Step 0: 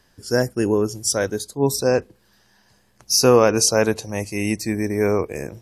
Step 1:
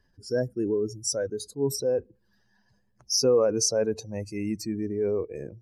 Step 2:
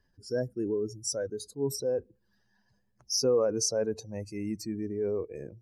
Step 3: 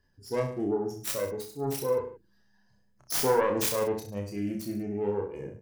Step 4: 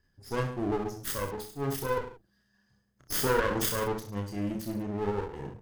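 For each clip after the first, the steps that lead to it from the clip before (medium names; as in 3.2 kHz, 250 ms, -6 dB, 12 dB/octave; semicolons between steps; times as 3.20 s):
spectral contrast enhancement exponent 1.8; trim -7 dB
dynamic bell 2.6 kHz, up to -5 dB, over -51 dBFS, Q 2.4; trim -4 dB
self-modulated delay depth 0.37 ms; reverse bouncing-ball echo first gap 30 ms, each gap 1.1×, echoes 5
comb filter that takes the minimum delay 0.62 ms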